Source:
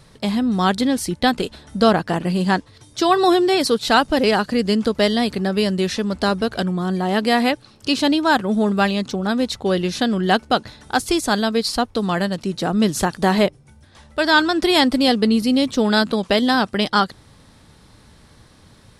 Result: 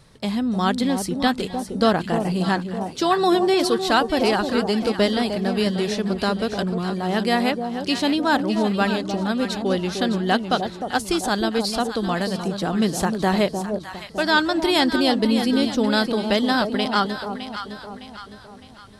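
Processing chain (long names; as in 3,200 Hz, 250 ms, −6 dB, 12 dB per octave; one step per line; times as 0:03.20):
on a send: delay that swaps between a low-pass and a high-pass 305 ms, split 910 Hz, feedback 66%, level −6 dB
on the sum: level −3.5 dB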